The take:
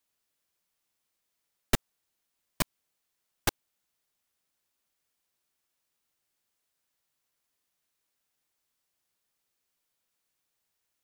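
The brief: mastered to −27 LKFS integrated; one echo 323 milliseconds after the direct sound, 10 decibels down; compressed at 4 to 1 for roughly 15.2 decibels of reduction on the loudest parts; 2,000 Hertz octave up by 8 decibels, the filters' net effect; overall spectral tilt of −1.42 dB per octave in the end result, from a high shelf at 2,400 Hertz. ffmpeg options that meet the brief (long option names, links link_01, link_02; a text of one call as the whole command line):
ffmpeg -i in.wav -af "equalizer=frequency=2000:width_type=o:gain=5.5,highshelf=frequency=2400:gain=9,acompressor=threshold=-35dB:ratio=4,aecho=1:1:323:0.316,volume=14.5dB" out.wav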